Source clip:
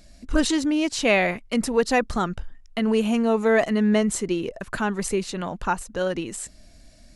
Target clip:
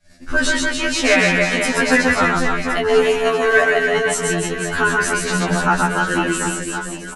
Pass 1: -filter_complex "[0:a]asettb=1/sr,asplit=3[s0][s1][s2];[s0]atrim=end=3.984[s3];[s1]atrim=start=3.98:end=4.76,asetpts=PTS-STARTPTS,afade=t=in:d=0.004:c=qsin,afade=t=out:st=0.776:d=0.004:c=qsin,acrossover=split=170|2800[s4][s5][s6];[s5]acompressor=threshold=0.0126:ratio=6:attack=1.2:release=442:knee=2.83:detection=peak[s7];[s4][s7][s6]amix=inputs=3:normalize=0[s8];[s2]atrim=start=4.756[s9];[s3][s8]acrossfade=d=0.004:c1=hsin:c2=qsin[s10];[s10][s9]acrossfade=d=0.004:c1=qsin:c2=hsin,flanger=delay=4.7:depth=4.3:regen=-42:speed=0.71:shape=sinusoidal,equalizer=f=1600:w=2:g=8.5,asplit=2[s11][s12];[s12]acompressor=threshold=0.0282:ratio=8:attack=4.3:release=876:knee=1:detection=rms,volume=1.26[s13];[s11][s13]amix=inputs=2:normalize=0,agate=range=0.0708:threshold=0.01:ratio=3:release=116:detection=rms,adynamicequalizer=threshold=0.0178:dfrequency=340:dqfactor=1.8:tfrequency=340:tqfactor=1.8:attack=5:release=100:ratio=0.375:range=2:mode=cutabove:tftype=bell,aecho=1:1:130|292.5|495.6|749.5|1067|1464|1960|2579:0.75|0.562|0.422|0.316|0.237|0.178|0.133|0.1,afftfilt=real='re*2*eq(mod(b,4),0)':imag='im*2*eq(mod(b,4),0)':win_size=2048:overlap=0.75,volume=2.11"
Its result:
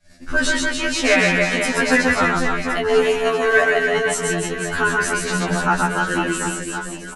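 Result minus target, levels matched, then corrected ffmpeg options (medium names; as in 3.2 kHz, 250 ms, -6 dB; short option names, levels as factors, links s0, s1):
compression: peak gain reduction +5.5 dB
-filter_complex "[0:a]asettb=1/sr,asplit=3[s0][s1][s2];[s0]atrim=end=3.984[s3];[s1]atrim=start=3.98:end=4.76,asetpts=PTS-STARTPTS,afade=t=in:d=0.004:c=qsin,afade=t=out:st=0.776:d=0.004:c=qsin,acrossover=split=170|2800[s4][s5][s6];[s5]acompressor=threshold=0.0126:ratio=6:attack=1.2:release=442:knee=2.83:detection=peak[s7];[s4][s7][s6]amix=inputs=3:normalize=0[s8];[s2]atrim=start=4.756[s9];[s3][s8]acrossfade=d=0.004:c1=hsin:c2=qsin[s10];[s10][s9]acrossfade=d=0.004:c1=qsin:c2=hsin,flanger=delay=4.7:depth=4.3:regen=-42:speed=0.71:shape=sinusoidal,equalizer=f=1600:w=2:g=8.5,asplit=2[s11][s12];[s12]acompressor=threshold=0.0596:ratio=8:attack=4.3:release=876:knee=1:detection=rms,volume=1.26[s13];[s11][s13]amix=inputs=2:normalize=0,agate=range=0.0708:threshold=0.01:ratio=3:release=116:detection=rms,adynamicequalizer=threshold=0.0178:dfrequency=340:dqfactor=1.8:tfrequency=340:tqfactor=1.8:attack=5:release=100:ratio=0.375:range=2:mode=cutabove:tftype=bell,aecho=1:1:130|292.5|495.6|749.5|1067|1464|1960|2579:0.75|0.562|0.422|0.316|0.237|0.178|0.133|0.1,afftfilt=real='re*2*eq(mod(b,4),0)':imag='im*2*eq(mod(b,4),0)':win_size=2048:overlap=0.75,volume=2.11"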